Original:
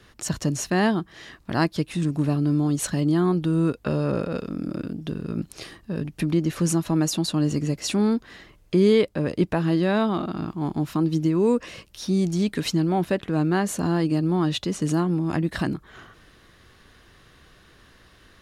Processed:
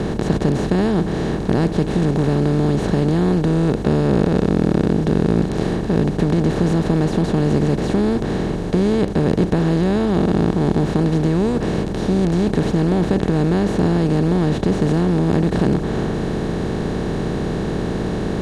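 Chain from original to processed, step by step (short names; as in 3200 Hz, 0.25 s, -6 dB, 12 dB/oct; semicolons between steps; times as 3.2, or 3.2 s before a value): per-bin compression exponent 0.2; RIAA curve playback; gain -8.5 dB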